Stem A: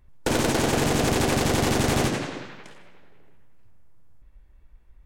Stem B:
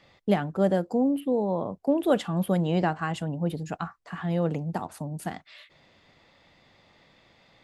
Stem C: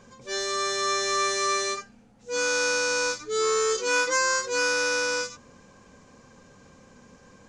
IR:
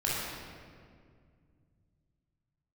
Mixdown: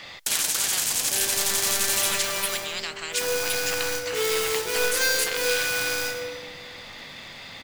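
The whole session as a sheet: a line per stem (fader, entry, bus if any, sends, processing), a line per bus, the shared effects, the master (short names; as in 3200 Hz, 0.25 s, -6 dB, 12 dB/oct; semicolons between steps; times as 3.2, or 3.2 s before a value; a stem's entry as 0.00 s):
+0.5 dB, 0.00 s, send -16 dB, pre-emphasis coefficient 0.9
-7.0 dB, 0.00 s, no send, spectral compressor 10:1
+1.5 dB, 0.85 s, send -8 dB, median filter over 41 samples; high shelf 3700 Hz +11 dB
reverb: on, RT60 2.1 s, pre-delay 20 ms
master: tilt shelf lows -7 dB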